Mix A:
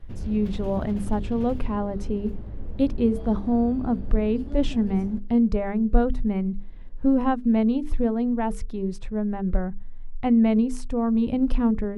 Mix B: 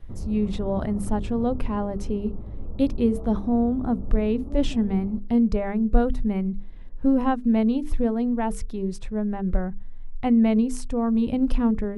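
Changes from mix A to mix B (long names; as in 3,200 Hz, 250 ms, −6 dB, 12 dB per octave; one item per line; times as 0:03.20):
background: add linear-phase brick-wall low-pass 1,400 Hz
master: add high-shelf EQ 6,000 Hz +7.5 dB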